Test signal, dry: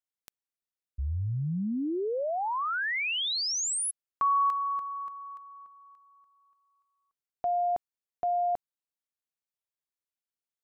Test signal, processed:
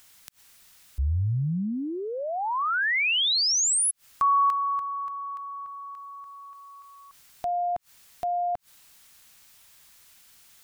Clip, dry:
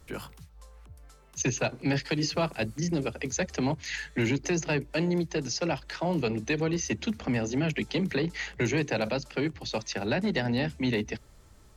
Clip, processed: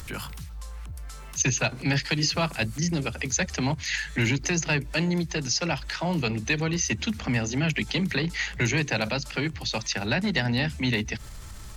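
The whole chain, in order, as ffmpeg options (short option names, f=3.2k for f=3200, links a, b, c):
-af "equalizer=f=420:t=o:w=2:g=-10,acompressor=mode=upward:threshold=-36dB:ratio=2.5:attack=0.68:release=72:knee=2.83:detection=peak,volume=7dB"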